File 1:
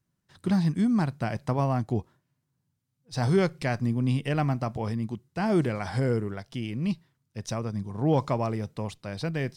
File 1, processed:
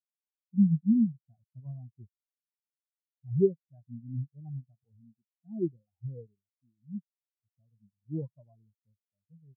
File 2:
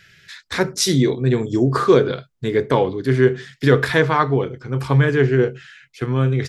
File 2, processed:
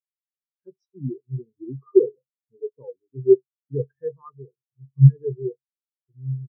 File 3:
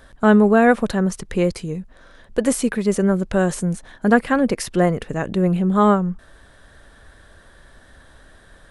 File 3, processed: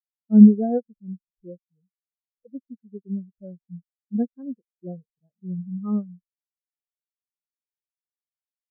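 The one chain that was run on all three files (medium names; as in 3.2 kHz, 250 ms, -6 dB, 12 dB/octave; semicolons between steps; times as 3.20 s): bands offset in time highs, lows 70 ms, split 2.5 kHz; spectral contrast expander 4:1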